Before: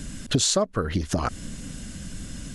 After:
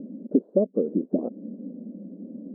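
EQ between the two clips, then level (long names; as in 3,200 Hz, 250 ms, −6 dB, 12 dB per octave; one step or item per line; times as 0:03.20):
linear-phase brick-wall high-pass 190 Hz
elliptic low-pass filter 550 Hz, stop band 80 dB
+5.5 dB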